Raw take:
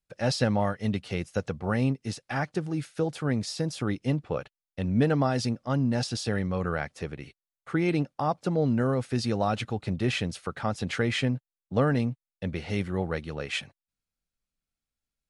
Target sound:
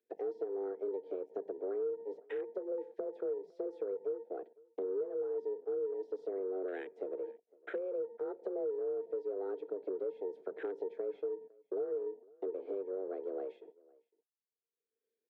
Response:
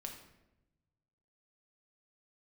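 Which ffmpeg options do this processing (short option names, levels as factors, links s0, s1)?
-filter_complex "[0:a]agate=range=0.0224:threshold=0.00355:ratio=3:detection=peak,asplit=3[s0][s1][s2];[s0]bandpass=f=270:t=q:w=8,volume=1[s3];[s1]bandpass=f=2290:t=q:w=8,volume=0.501[s4];[s2]bandpass=f=3010:t=q:w=8,volume=0.355[s5];[s3][s4][s5]amix=inputs=3:normalize=0,acompressor=mode=upward:threshold=0.0178:ratio=2.5,asplit=2[s6][s7];[1:a]atrim=start_sample=2205,afade=t=out:st=0.19:d=0.01,atrim=end_sample=8820[s8];[s7][s8]afir=irnorm=-1:irlink=0,volume=0.266[s9];[s6][s9]amix=inputs=2:normalize=0,acompressor=threshold=0.01:ratio=8,afreqshift=190,highshelf=f=2000:t=q:w=3:g=-8.5,asoftclip=type=tanh:threshold=0.02,equalizer=f=390:t=o:w=1.8:g=5,afwtdn=0.00282,asplit=2[s10][s11];[s11]adelay=507.3,volume=0.0562,highshelf=f=4000:g=-11.4[s12];[s10][s12]amix=inputs=2:normalize=0,volume=1.26"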